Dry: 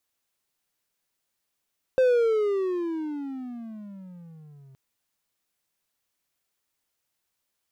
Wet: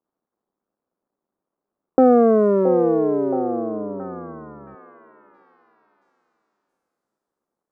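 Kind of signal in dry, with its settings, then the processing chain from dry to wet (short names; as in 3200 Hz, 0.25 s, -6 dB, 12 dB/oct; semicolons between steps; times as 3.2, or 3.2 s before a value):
gliding synth tone triangle, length 2.77 s, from 524 Hz, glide -24 st, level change -32 dB, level -14 dB
cycle switcher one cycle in 2, muted; EQ curve 110 Hz 0 dB, 200 Hz +13 dB, 330 Hz +14 dB, 740 Hz +8 dB, 1200 Hz +6 dB, 2900 Hz -25 dB; on a send: delay with a stepping band-pass 0.672 s, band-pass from 500 Hz, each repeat 0.7 oct, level -5 dB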